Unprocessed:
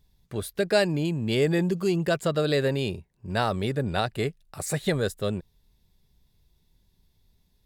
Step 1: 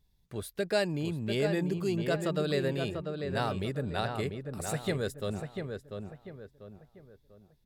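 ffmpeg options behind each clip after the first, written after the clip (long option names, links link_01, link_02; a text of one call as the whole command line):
ffmpeg -i in.wav -filter_complex "[0:a]asplit=2[link_01][link_02];[link_02]adelay=693,lowpass=frequency=2200:poles=1,volume=-5.5dB,asplit=2[link_03][link_04];[link_04]adelay=693,lowpass=frequency=2200:poles=1,volume=0.38,asplit=2[link_05][link_06];[link_06]adelay=693,lowpass=frequency=2200:poles=1,volume=0.38,asplit=2[link_07][link_08];[link_08]adelay=693,lowpass=frequency=2200:poles=1,volume=0.38,asplit=2[link_09][link_10];[link_10]adelay=693,lowpass=frequency=2200:poles=1,volume=0.38[link_11];[link_01][link_03][link_05][link_07][link_09][link_11]amix=inputs=6:normalize=0,volume=-6.5dB" out.wav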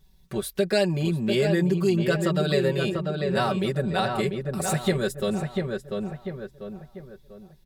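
ffmpeg -i in.wav -af "aecho=1:1:5.3:0.89,acompressor=threshold=-37dB:ratio=1.5,volume=9dB" out.wav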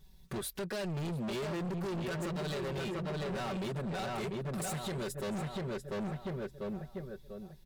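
ffmpeg -i in.wav -af "alimiter=limit=-21.5dB:level=0:latency=1:release=313,volume=34.5dB,asoftclip=hard,volume=-34.5dB" out.wav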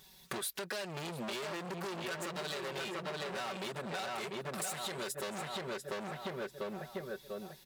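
ffmpeg -i in.wav -af "highpass=frequency=900:poles=1,acompressor=threshold=-48dB:ratio=6,volume=12dB" out.wav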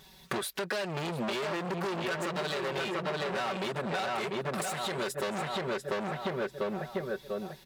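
ffmpeg -i in.wav -af "highshelf=frequency=4700:gain=-9.5,volume=7.5dB" out.wav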